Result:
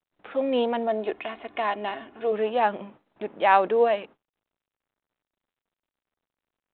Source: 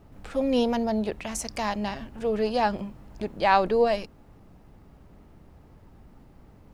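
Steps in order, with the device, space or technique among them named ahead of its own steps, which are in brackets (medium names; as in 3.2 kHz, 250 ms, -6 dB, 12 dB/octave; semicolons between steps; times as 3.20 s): 0.87–2.32 s: comb 2.8 ms, depth 52%; gate -42 dBFS, range -44 dB; telephone (band-pass 330–3500 Hz; trim +2 dB; µ-law 64 kbps 8 kHz)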